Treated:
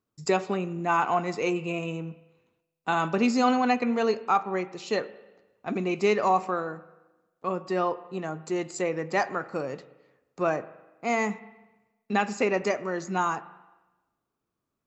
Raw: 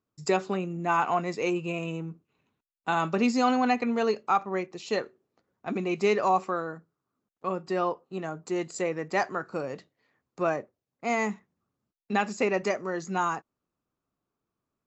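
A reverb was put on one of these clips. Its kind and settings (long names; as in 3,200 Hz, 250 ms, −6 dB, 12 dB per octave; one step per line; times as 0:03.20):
spring reverb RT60 1.1 s, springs 38/44 ms, chirp 80 ms, DRR 15 dB
level +1 dB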